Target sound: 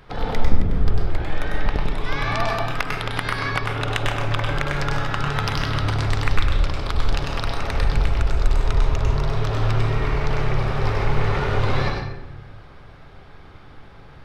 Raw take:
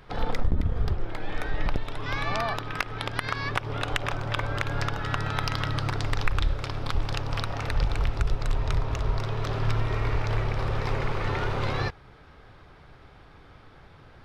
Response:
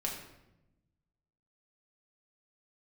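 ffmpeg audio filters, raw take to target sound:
-filter_complex "[0:a]asplit=2[link_01][link_02];[1:a]atrim=start_sample=2205,asetrate=42777,aresample=44100,adelay=98[link_03];[link_02][link_03]afir=irnorm=-1:irlink=0,volume=-3.5dB[link_04];[link_01][link_04]amix=inputs=2:normalize=0,volume=2.5dB"

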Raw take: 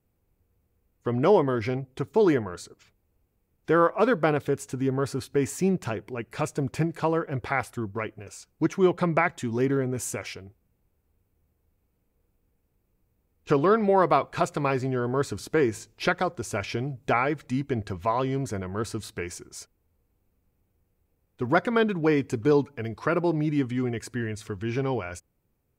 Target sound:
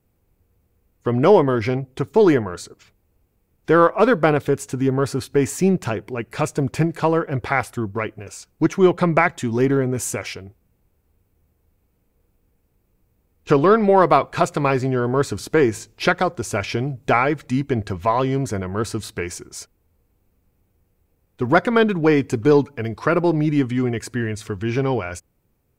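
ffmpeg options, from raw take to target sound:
ffmpeg -i in.wav -af "aeval=exprs='0.447*(cos(1*acos(clip(val(0)/0.447,-1,1)))-cos(1*PI/2))+0.00447*(cos(8*acos(clip(val(0)/0.447,-1,1)))-cos(8*PI/2))':channel_layout=same,volume=6.5dB" out.wav

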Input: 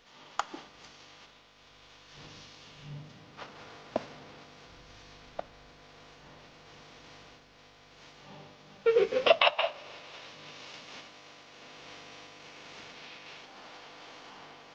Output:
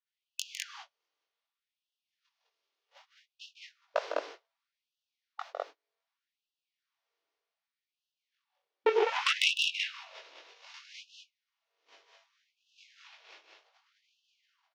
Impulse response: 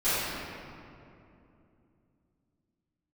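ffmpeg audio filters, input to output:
-af "highpass=frequency=150:poles=1,bandreject=frequency=50:width_type=h:width=6,bandreject=frequency=100:width_type=h:width=6,bandreject=frequency=150:width_type=h:width=6,bandreject=frequency=200:width_type=h:width=6,agate=range=-40dB:threshold=-45dB:ratio=16:detection=peak,acompressor=threshold=-25dB:ratio=20,flanger=delay=19.5:depth=4.4:speed=0.52,aeval=exprs='0.133*(cos(1*acos(clip(val(0)/0.133,-1,1)))-cos(1*PI/2))+0.0299*(cos(4*acos(clip(val(0)/0.133,-1,1)))-cos(4*PI/2))':channel_layout=same,afreqshift=-28,aecho=1:1:154.5|204.1:0.355|0.708,afftfilt=real='re*gte(b*sr/1024,280*pow(2600/280,0.5+0.5*sin(2*PI*0.65*pts/sr)))':imag='im*gte(b*sr/1024,280*pow(2600/280,0.5+0.5*sin(2*PI*0.65*pts/sr)))':win_size=1024:overlap=0.75,volume=7.5dB"

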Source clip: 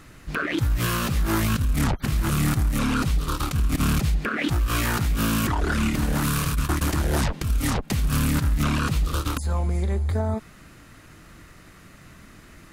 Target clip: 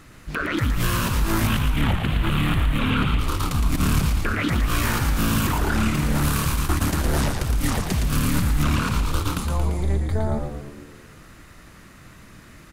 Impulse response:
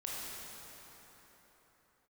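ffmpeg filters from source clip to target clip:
-filter_complex "[0:a]asettb=1/sr,asplit=3[link_01][link_02][link_03];[link_01]atrim=end=1.474[link_04];[link_02]atrim=start=1.47:end=3.19,asetpts=PTS-STARTPTS,afade=type=in:duration=0.004:curve=qsin,afade=type=out:start_time=1.716:duration=0.004:curve=qsin,highshelf=frequency=4200:width_type=q:width=3:gain=-9.5[link_05];[link_03]atrim=start=3.186[link_06];[link_04][link_05]acrossfade=duration=0.004:curve1=hsin:curve2=qsin[link_07];[link_07][link_06]acrossfade=duration=0.004:curve1=qsin:curve2=hsin,asplit=9[link_08][link_09][link_10][link_11][link_12][link_13][link_14][link_15][link_16];[link_09]adelay=114,afreqshift=-75,volume=-5dB[link_17];[link_10]adelay=228,afreqshift=-150,volume=-9.7dB[link_18];[link_11]adelay=342,afreqshift=-225,volume=-14.5dB[link_19];[link_12]adelay=456,afreqshift=-300,volume=-19.2dB[link_20];[link_13]adelay=570,afreqshift=-375,volume=-23.9dB[link_21];[link_14]adelay=684,afreqshift=-450,volume=-28.7dB[link_22];[link_15]adelay=798,afreqshift=-525,volume=-33.4dB[link_23];[link_16]adelay=912,afreqshift=-600,volume=-38.1dB[link_24];[link_08][link_17][link_18][link_19][link_20][link_21][link_22][link_23][link_24]amix=inputs=9:normalize=0"

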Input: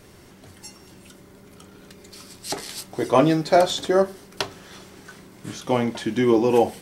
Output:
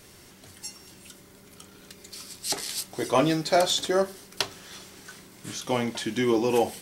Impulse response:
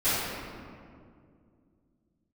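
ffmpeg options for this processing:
-filter_complex "[0:a]highshelf=frequency=2100:gain=9.5,asplit=2[link_01][link_02];[link_02]asoftclip=type=tanh:threshold=-10dB,volume=-7dB[link_03];[link_01][link_03]amix=inputs=2:normalize=0,volume=-8.5dB"

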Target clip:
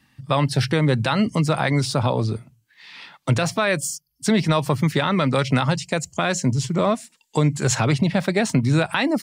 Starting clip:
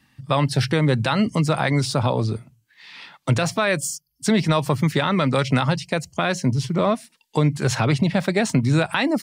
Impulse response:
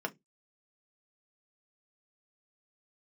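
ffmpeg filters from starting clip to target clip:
-filter_complex "[0:a]asettb=1/sr,asplit=3[link_01][link_02][link_03];[link_01]atrim=end=5.694[link_04];[link_02]atrim=start=5.69:end=7.93,asetpts=PTS-STARTPTS,afade=type=in:duration=0.004:curve=qsin,afade=type=out:start_time=2.236:duration=0.004:curve=qsin,equalizer=frequency=7300:width_type=o:width=0.35:gain=10.5[link_05];[link_03]atrim=start=7.926[link_06];[link_04][link_05]acrossfade=duration=0.004:curve1=hsin:curve2=qsin[link_07];[link_07][link_06]acrossfade=duration=0.004:curve1=qsin:curve2=hsin"

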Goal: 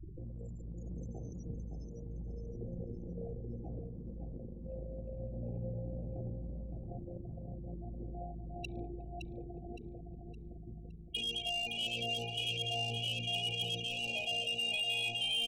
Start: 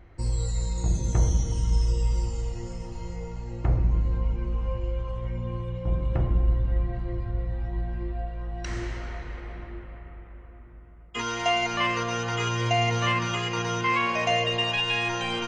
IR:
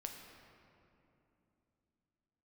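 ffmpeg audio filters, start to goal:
-filter_complex "[0:a]aeval=exprs='val(0)+0.5*0.0398*sgn(val(0))':channel_layout=same,afftfilt=real='re*gte(hypot(re,im),0.0708)':imag='im*gte(hypot(re,im),0.0708)':win_size=1024:overlap=0.75,lowpass=frequency=3200:width_type=q:width=13,bandreject=frequency=50:width_type=h:width=6,bandreject=frequency=100:width_type=h:width=6,bandreject=frequency=150:width_type=h:width=6,bandreject=frequency=200:width_type=h:width=6,bandreject=frequency=250:width_type=h:width=6,bandreject=frequency=300:width_type=h:width=6,bandreject=frequency=350:width_type=h:width=6,bandreject=frequency=400:width_type=h:width=6,areverse,acompressor=threshold=-27dB:ratio=6,areverse,tremolo=f=56:d=0.462,aeval=exprs='0.106*(cos(1*acos(clip(val(0)/0.106,-1,1)))-cos(1*PI/2))+0.0133*(cos(5*acos(clip(val(0)/0.106,-1,1)))-cos(5*PI/2))':channel_layout=same,afftfilt=real='re*(1-between(b*sr/4096,860,2300))':imag='im*(1-between(b*sr/4096,860,2300))':win_size=4096:overlap=0.75,acrossover=split=120|810[link_01][link_02][link_03];[link_01]asoftclip=type=tanh:threshold=-39.5dB[link_04];[link_04][link_02][link_03]amix=inputs=3:normalize=0,aecho=1:1:565|1130|1695|2260|2825:0.501|0.19|0.0724|0.0275|0.0105,volume=-7.5dB"

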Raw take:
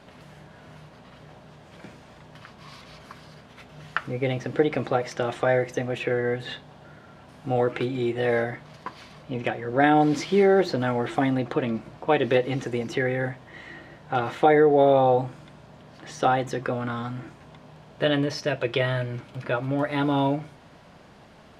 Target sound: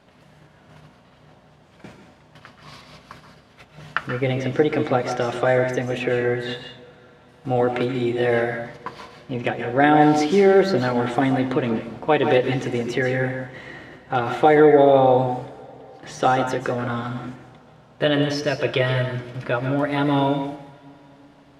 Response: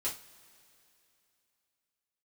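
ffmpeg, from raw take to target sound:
-filter_complex "[0:a]agate=range=-8dB:threshold=-45dB:ratio=16:detection=peak,asplit=2[link_01][link_02];[1:a]atrim=start_sample=2205,asetrate=30870,aresample=44100,adelay=126[link_03];[link_02][link_03]afir=irnorm=-1:irlink=0,volume=-12dB[link_04];[link_01][link_04]amix=inputs=2:normalize=0,volume=3dB"

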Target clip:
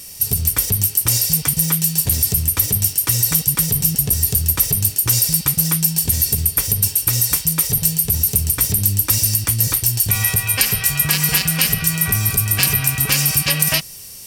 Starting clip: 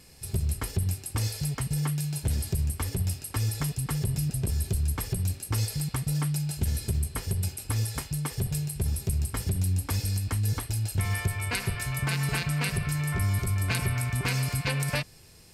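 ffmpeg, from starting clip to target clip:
ffmpeg -i in.wav -af "crystalizer=i=5.5:c=0,acontrast=81,asetrate=48000,aresample=44100,volume=-2dB" out.wav

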